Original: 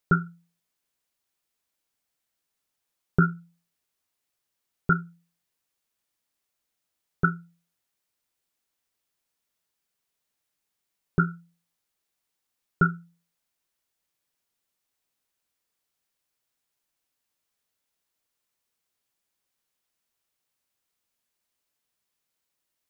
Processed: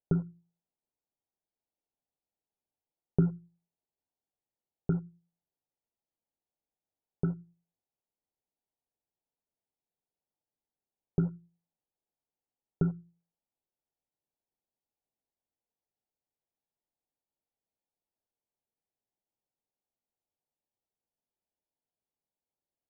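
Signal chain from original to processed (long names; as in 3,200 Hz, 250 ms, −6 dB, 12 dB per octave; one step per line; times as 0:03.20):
in parallel at −10.5 dB: bit reduction 5 bits
on the sum: Chebyshev low-pass filter 860 Hz, order 4
mains-hum notches 60/120/180/240/300/360 Hz
level −4.5 dB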